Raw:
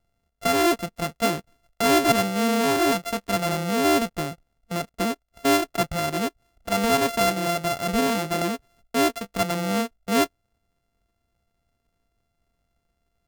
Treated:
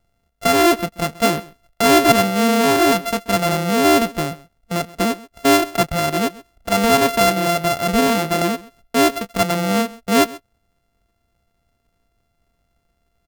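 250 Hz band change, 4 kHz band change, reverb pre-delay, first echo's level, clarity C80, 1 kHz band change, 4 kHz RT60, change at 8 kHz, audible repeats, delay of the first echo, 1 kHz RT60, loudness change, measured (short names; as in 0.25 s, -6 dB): +6.0 dB, +6.0 dB, none, -20.5 dB, none, +6.5 dB, none, +5.5 dB, 1, 0.132 s, none, +6.0 dB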